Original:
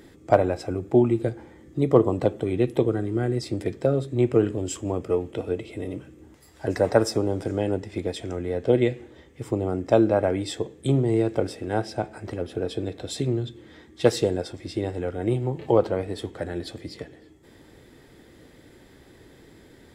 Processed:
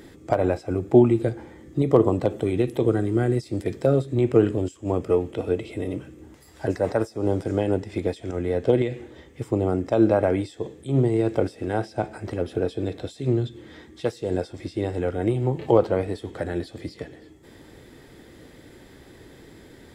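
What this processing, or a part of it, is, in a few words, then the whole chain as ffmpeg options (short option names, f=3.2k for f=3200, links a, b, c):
de-esser from a sidechain: -filter_complex "[0:a]asplit=2[a][b];[b]highpass=6.5k,apad=whole_len=879586[c];[a][c]sidechaincompress=threshold=-55dB:ratio=5:attack=4.4:release=93,asettb=1/sr,asplit=3[d][e][f];[d]atrim=end=2.304[g];[e]atrim=start=2.3:end=4.02,asetpts=PTS-STARTPTS,afade=t=in:d=0.004:c=qsin,afade=t=out:st=1.716:d=0.004:c=qsin,highshelf=f=6.8k:g=6[h];[f]atrim=start=4.016[i];[g][h]acrossfade=d=0.004:c1=hsin:c2=qsin[j];[j][i]acrossfade=d=0.004:c1=qsin:c2=hsin,volume=3.5dB"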